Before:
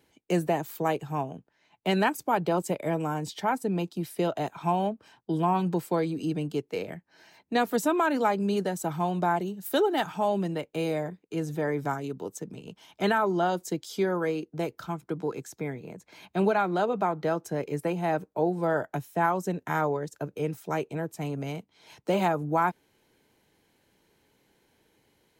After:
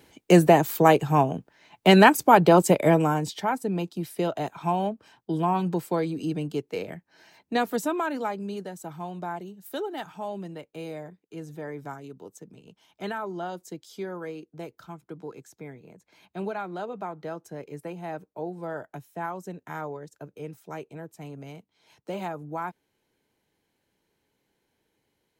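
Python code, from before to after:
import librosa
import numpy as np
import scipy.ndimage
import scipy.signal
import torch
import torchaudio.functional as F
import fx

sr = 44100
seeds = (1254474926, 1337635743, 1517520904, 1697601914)

y = fx.gain(x, sr, db=fx.line((2.87, 10.0), (3.49, 0.5), (7.54, 0.5), (8.64, -8.0)))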